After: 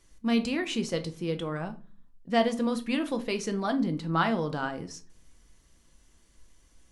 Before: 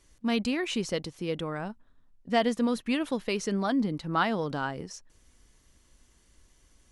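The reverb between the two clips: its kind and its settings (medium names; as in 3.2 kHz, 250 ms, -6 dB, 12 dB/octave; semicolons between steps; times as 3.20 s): simulated room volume 220 m³, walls furnished, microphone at 0.73 m; trim -1 dB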